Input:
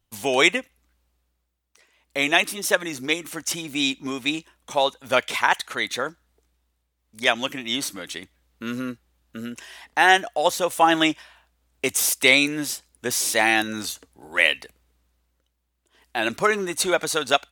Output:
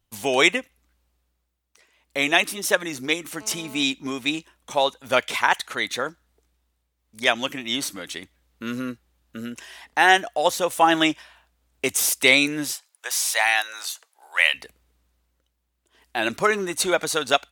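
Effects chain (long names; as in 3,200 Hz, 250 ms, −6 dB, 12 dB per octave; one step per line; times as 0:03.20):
0:03.41–0:03.83: phone interference −44 dBFS
0:12.72–0:14.54: high-pass filter 700 Hz 24 dB per octave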